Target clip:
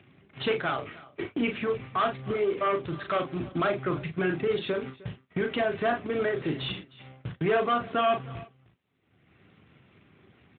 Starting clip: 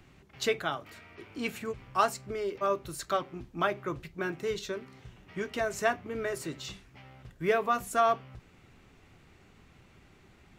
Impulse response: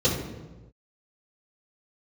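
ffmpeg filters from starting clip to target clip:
-filter_complex "[0:a]agate=range=-50dB:threshold=-47dB:ratio=16:detection=peak,bandreject=f=900:w=6.1,acompressor=mode=upward:threshold=-29dB:ratio=2.5,acrusher=bits=2:mode=log:mix=0:aa=0.000001,volume=28dB,asoftclip=hard,volume=-28dB,asplit=2[a][b];[b]adelay=38,volume=-6dB[c];[a][c]amix=inputs=2:normalize=0,asplit=2[d][e];[e]aecho=0:1:308:0.0944[f];[d][f]amix=inputs=2:normalize=0,volume=6dB" -ar 8000 -c:a libopencore_amrnb -b:a 12200

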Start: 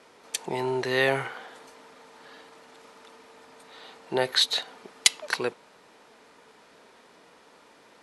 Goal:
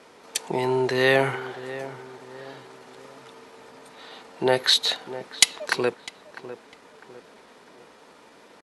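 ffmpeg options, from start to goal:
-filter_complex "[0:a]equalizer=f=190:w=0.33:g=2.5,atempo=0.93,asplit=2[a][b];[b]adelay=652,lowpass=f=1.5k:p=1,volume=-13.5dB,asplit=2[c][d];[d]adelay=652,lowpass=f=1.5k:p=1,volume=0.43,asplit=2[e][f];[f]adelay=652,lowpass=f=1.5k:p=1,volume=0.43,asplit=2[g][h];[h]adelay=652,lowpass=f=1.5k:p=1,volume=0.43[i];[a][c][e][g][i]amix=inputs=5:normalize=0,volume=3dB"

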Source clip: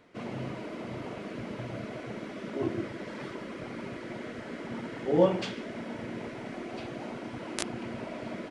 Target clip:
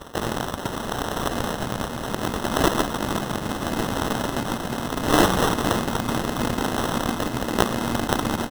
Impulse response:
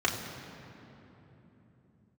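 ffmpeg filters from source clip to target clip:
-filter_complex "[0:a]lowshelf=f=400:t=q:w=3:g=11,bandreject=f=50:t=h:w=6,bandreject=f=100:t=h:w=6,bandreject=f=150:t=h:w=6,tremolo=f=0.74:d=0.45,acrossover=split=390[a][b];[a]acompressor=threshold=-37dB:ratio=8[c];[c][b]amix=inputs=2:normalize=0,aecho=1:1:505|1010|1515|2020|2525|3030:0.355|0.185|0.0959|0.0499|0.0259|0.0135,adynamicsmooth=sensitivity=5:basefreq=3.4k,acrusher=bits=2:mode=log:mix=0:aa=0.000001,asubboost=boost=9.5:cutoff=170,aexciter=amount=15:drive=5.2:freq=2.1k,acrusher=samples=19:mix=1:aa=0.000001,aeval=exprs='11.9*(cos(1*acos(clip(val(0)/11.9,-1,1)))-cos(1*PI/2))+1.19*(cos(8*acos(clip(val(0)/11.9,-1,1)))-cos(8*PI/2))':c=same,volume=-3.5dB"

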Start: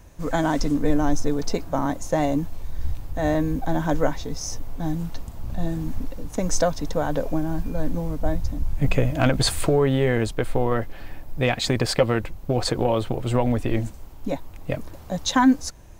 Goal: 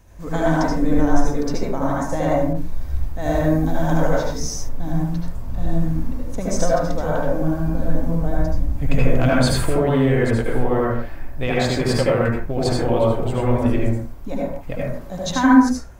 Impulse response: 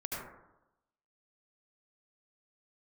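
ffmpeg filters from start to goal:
-filter_complex "[1:a]atrim=start_sample=2205,afade=t=out:st=0.32:d=0.01,atrim=end_sample=14553[a];[0:a][a]afir=irnorm=-1:irlink=0,asettb=1/sr,asplit=3[b][c][d];[b]atrim=end=2.534[e];[c]atrim=start=2.53:end=4.69,asetpts=PTS-STARTPTS,afade=t=in:d=0.004:c=qsin,afade=t=out:st=2.156:d=0.004:c=qsin,adynamicequalizer=threshold=0.00708:dfrequency=3200:dqfactor=0.7:tfrequency=3200:tqfactor=0.7:attack=5:release=100:ratio=0.375:range=2.5:mode=boostabove:tftype=highshelf[f];[d]atrim=start=4.686[g];[e][f]acrossfade=d=0.004:c1=hsin:c2=qsin[h];[h][g]acrossfade=d=0.004:c1=qsin:c2=hsin"

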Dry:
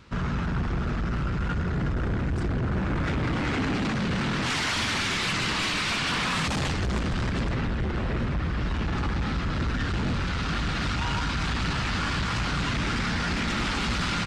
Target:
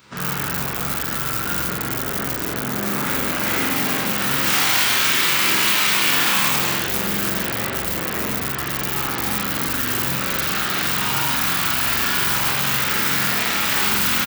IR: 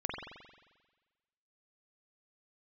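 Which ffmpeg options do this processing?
-filter_complex "[0:a]asplit=2[a][b];[b]adelay=29,volume=-2.5dB[c];[a][c]amix=inputs=2:normalize=0[d];[1:a]atrim=start_sample=2205,afade=t=out:st=0.3:d=0.01,atrim=end_sample=13671[e];[d][e]afir=irnorm=-1:irlink=0,asplit=2[f][g];[g]aeval=exprs='(mod(7.5*val(0)+1,2)-1)/7.5':c=same,volume=-10.5dB[h];[f][h]amix=inputs=2:normalize=0,highpass=80,aemphasis=mode=production:type=bsi"

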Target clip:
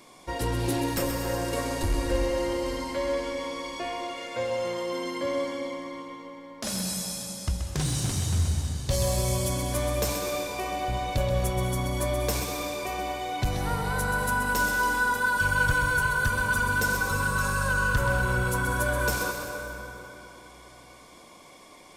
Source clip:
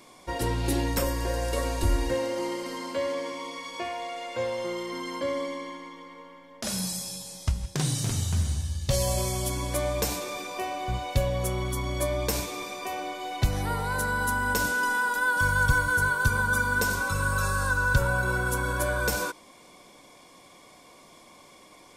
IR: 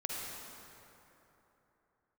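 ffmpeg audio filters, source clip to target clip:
-filter_complex "[0:a]asoftclip=type=tanh:threshold=-19dB,asplit=2[a][b];[1:a]atrim=start_sample=2205,adelay=129[c];[b][c]afir=irnorm=-1:irlink=0,volume=-5.5dB[d];[a][d]amix=inputs=2:normalize=0"

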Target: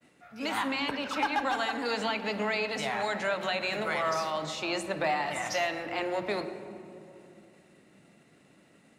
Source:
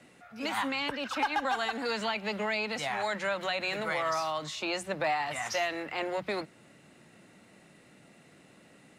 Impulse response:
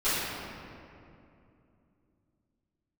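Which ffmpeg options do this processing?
-filter_complex "[0:a]agate=range=-33dB:threshold=-52dB:ratio=3:detection=peak,asplit=2[a][b];[b]equalizer=f=250:w=0.31:g=6.5[c];[1:a]atrim=start_sample=2205[d];[c][d]afir=irnorm=-1:irlink=0,volume=-23.5dB[e];[a][e]amix=inputs=2:normalize=0"

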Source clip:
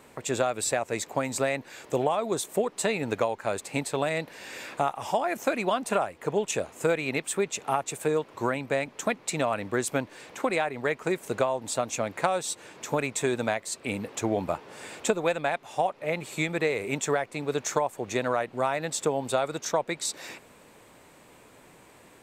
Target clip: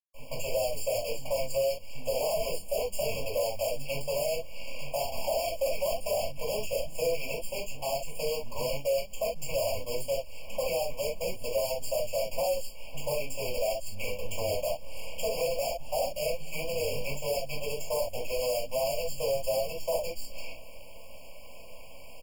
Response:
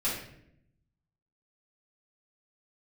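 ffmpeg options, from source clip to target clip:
-filter_complex "[0:a]firequalizer=gain_entry='entry(100,0);entry(150,-3);entry(240,-26);entry(580,13);entry(830,-1);entry(1200,3);entry(2200,3);entry(3400,7);entry(7900,-9);entry(14000,-23)':delay=0.05:min_phase=1,acrossover=split=170[a][b];[b]adelay=140[c];[a][c]amix=inputs=2:normalize=0,acrossover=split=820[d][e];[e]acompressor=threshold=-40dB:ratio=6[f];[d][f]amix=inputs=2:normalize=0,aexciter=amount=7.4:drive=6.1:freq=8.5k,acrusher=bits=6:dc=4:mix=0:aa=0.000001,equalizer=f=530:w=0.53:g=-3,bandreject=f=100.8:t=h:w=4,bandreject=f=201.6:t=h:w=4,bandreject=f=302.4:t=h:w=4[g];[1:a]atrim=start_sample=2205,atrim=end_sample=3528[h];[g][h]afir=irnorm=-1:irlink=0,asoftclip=type=tanh:threshold=-11dB,acrossover=split=140|3000[i][j][k];[j]acompressor=threshold=-45dB:ratio=1.5[l];[i][l][k]amix=inputs=3:normalize=0,afftfilt=real='re*eq(mod(floor(b*sr/1024/1100),2),0)':imag='im*eq(mod(floor(b*sr/1024/1100),2),0)':win_size=1024:overlap=0.75"

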